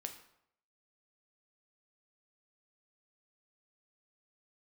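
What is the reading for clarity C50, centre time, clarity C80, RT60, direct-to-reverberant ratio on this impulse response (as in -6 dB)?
10.0 dB, 14 ms, 12.5 dB, 0.70 s, 5.0 dB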